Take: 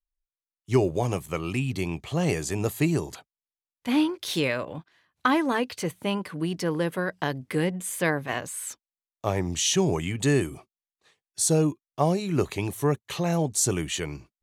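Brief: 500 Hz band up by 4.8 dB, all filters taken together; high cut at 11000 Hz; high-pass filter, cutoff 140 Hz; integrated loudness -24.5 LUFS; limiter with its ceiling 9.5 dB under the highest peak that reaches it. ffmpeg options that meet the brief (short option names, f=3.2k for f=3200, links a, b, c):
-af "highpass=140,lowpass=11k,equalizer=f=500:t=o:g=6,volume=3dB,alimiter=limit=-12.5dB:level=0:latency=1"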